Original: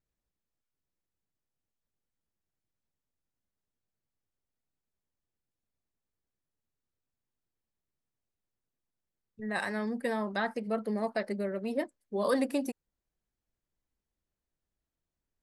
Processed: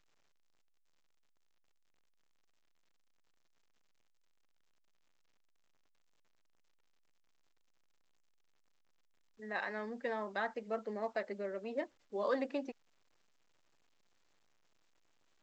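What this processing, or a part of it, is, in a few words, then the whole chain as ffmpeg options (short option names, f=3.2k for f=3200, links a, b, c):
telephone: -af "highpass=330,lowpass=3.4k,volume=-4.5dB" -ar 16000 -c:a pcm_alaw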